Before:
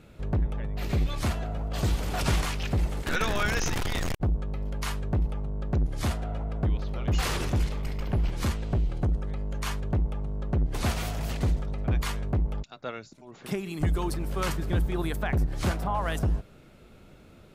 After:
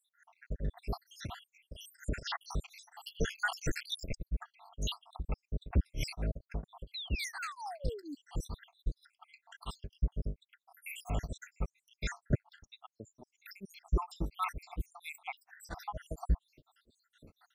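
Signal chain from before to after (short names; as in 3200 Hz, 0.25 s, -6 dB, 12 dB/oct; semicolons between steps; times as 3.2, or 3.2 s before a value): random spectral dropouts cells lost 83%; 3.78–6.13 bell 3800 Hz +7.5 dB 1.5 oct; 6.94–8.15 painted sound fall 270–4200 Hz -41 dBFS; beating tremolo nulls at 4.3 Hz; gain +1 dB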